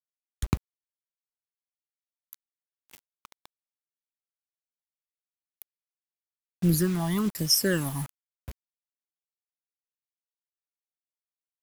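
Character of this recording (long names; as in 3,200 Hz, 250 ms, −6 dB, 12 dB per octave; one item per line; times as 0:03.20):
phaser sweep stages 12, 1.1 Hz, lowest notch 430–1,400 Hz
a quantiser's noise floor 8 bits, dither none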